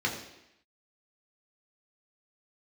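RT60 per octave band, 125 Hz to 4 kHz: 0.70, 0.85, 0.80, 0.85, 0.90, 0.85 s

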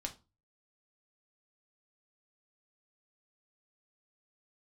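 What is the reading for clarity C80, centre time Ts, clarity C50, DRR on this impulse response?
22.5 dB, 8 ms, 15.5 dB, 3.0 dB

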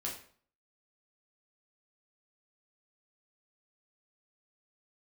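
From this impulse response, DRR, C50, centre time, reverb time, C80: -3.5 dB, 6.5 dB, 29 ms, 0.50 s, 11.0 dB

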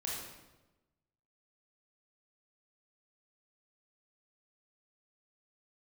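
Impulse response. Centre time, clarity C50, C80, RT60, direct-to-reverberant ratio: 72 ms, -0.5 dB, 3.0 dB, 1.1 s, -4.5 dB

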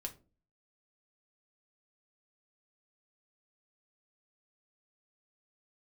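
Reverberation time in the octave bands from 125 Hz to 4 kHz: 0.60, 0.55, 0.40, 0.30, 0.25, 0.20 s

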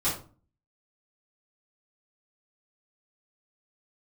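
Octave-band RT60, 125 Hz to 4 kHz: 0.60, 0.55, 0.40, 0.35, 0.25, 0.25 s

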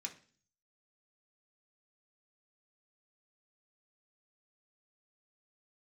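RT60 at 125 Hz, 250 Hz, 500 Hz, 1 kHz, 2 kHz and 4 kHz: 0.75, 0.60, 0.45, 0.40, 0.45, 0.50 s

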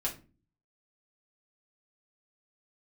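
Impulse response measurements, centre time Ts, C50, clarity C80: 14 ms, 12.0 dB, 19.0 dB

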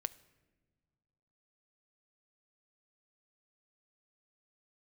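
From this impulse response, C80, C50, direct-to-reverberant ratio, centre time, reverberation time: 21.5 dB, 19.0 dB, 14.0 dB, 3 ms, not exponential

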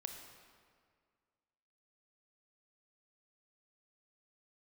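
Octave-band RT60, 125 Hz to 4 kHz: 2.0, 2.1, 2.0, 1.9, 1.7, 1.4 s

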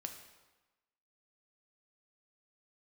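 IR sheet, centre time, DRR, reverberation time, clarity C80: 23 ms, 4.5 dB, 1.1 s, 9.5 dB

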